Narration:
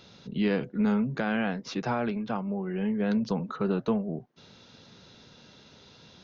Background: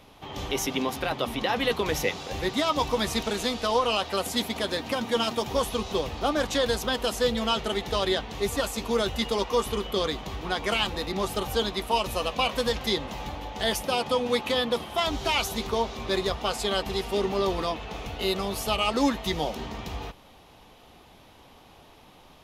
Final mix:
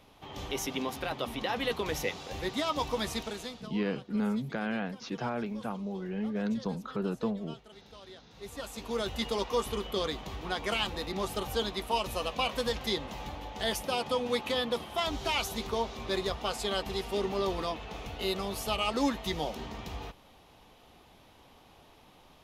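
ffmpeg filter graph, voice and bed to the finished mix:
-filter_complex "[0:a]adelay=3350,volume=-5dB[a];[1:a]volume=14dB,afade=t=out:st=3.07:d=0.65:silence=0.112202,afade=t=in:st=8.29:d=0.95:silence=0.1[b];[a][b]amix=inputs=2:normalize=0"

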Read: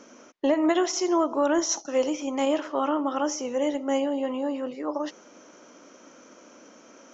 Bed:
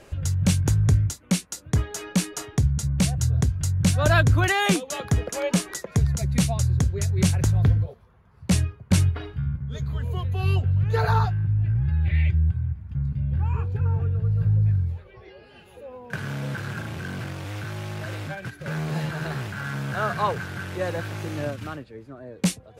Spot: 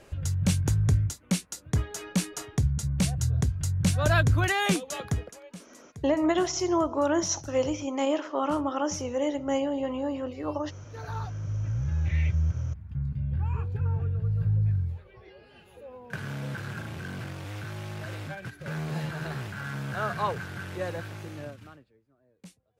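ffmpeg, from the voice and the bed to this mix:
-filter_complex "[0:a]adelay=5600,volume=-2dB[a];[1:a]volume=14dB,afade=t=out:st=5.02:d=0.38:silence=0.11885,afade=t=in:st=10.88:d=1.14:silence=0.125893,afade=t=out:st=20.75:d=1.26:silence=0.0794328[b];[a][b]amix=inputs=2:normalize=0"

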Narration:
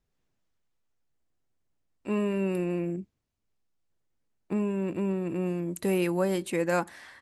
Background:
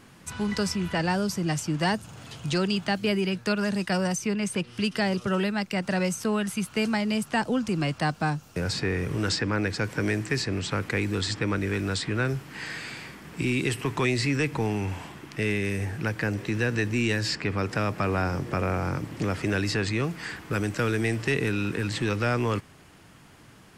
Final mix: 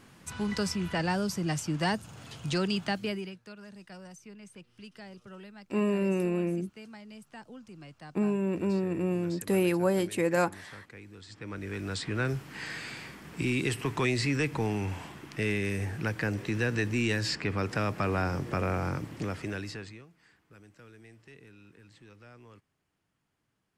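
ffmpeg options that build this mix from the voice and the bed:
-filter_complex "[0:a]adelay=3650,volume=0.5dB[a];[1:a]volume=15dB,afade=t=out:st=2.85:d=0.54:silence=0.125893,afade=t=in:st=11.27:d=1.03:silence=0.11885,afade=t=out:st=18.86:d=1.19:silence=0.0595662[b];[a][b]amix=inputs=2:normalize=0"

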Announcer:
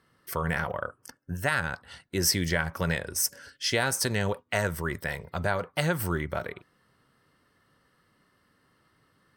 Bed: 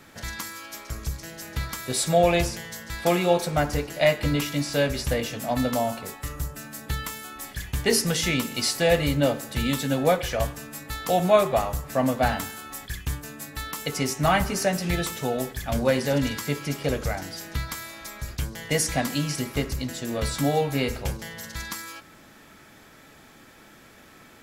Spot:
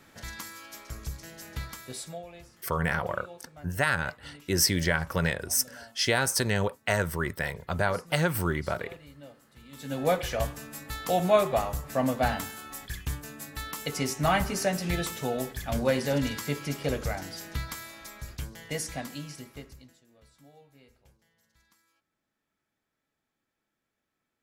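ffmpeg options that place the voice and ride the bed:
-filter_complex "[0:a]adelay=2350,volume=1dB[a];[1:a]volume=17dB,afade=t=out:st=1.55:d=0.69:silence=0.0944061,afade=t=in:st=9.71:d=0.43:silence=0.0707946,afade=t=out:st=17.45:d=2.59:silence=0.0334965[b];[a][b]amix=inputs=2:normalize=0"

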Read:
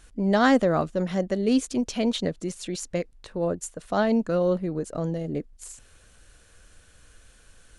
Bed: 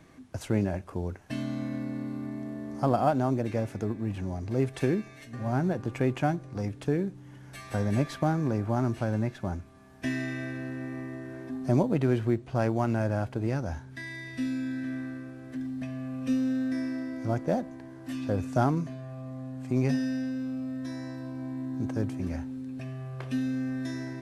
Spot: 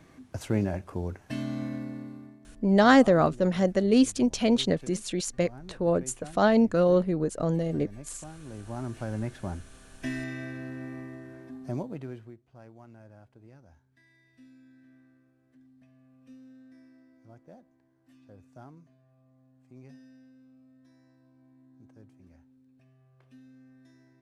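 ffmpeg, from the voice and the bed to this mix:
-filter_complex "[0:a]adelay=2450,volume=1.5dB[a];[1:a]volume=16dB,afade=t=out:st=1.64:d=0.75:silence=0.11885,afade=t=in:st=8.4:d=0.96:silence=0.158489,afade=t=out:st=10.88:d=1.48:silence=0.0841395[b];[a][b]amix=inputs=2:normalize=0"

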